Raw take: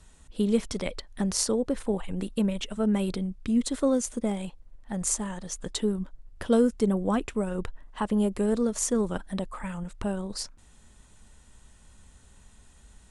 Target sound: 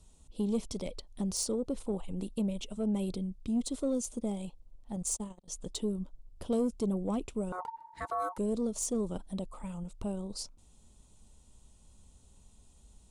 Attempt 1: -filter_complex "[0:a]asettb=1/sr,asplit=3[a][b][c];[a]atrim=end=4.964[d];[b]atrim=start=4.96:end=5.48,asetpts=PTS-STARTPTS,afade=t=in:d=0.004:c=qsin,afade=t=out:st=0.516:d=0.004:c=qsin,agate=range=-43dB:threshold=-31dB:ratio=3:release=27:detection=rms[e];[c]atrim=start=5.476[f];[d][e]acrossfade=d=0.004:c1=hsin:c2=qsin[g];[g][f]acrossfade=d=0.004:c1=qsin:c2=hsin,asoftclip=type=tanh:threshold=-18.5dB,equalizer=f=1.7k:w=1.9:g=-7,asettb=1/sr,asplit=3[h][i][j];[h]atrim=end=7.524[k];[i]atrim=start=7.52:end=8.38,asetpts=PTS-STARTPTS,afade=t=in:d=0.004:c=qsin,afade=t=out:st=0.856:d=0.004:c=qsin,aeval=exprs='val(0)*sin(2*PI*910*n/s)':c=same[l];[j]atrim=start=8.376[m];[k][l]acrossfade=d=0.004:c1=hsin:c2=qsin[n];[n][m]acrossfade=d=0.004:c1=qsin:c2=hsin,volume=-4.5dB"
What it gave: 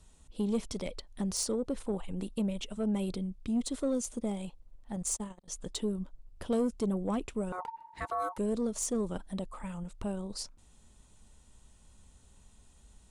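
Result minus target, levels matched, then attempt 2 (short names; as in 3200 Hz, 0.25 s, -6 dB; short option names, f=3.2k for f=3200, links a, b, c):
2000 Hz band +3.0 dB
-filter_complex "[0:a]asettb=1/sr,asplit=3[a][b][c];[a]atrim=end=4.964[d];[b]atrim=start=4.96:end=5.48,asetpts=PTS-STARTPTS,afade=t=in:d=0.004:c=qsin,afade=t=out:st=0.516:d=0.004:c=qsin,agate=range=-43dB:threshold=-31dB:ratio=3:release=27:detection=rms[e];[c]atrim=start=5.476[f];[d][e]acrossfade=d=0.004:c1=hsin:c2=qsin[g];[g][f]acrossfade=d=0.004:c1=qsin:c2=hsin,asoftclip=type=tanh:threshold=-18.5dB,equalizer=f=1.7k:w=1.9:g=-18.5,asettb=1/sr,asplit=3[h][i][j];[h]atrim=end=7.524[k];[i]atrim=start=7.52:end=8.38,asetpts=PTS-STARTPTS,afade=t=in:d=0.004:c=qsin,afade=t=out:st=0.856:d=0.004:c=qsin,aeval=exprs='val(0)*sin(2*PI*910*n/s)':c=same[l];[j]atrim=start=8.376[m];[k][l]acrossfade=d=0.004:c1=hsin:c2=qsin[n];[n][m]acrossfade=d=0.004:c1=qsin:c2=hsin,volume=-4.5dB"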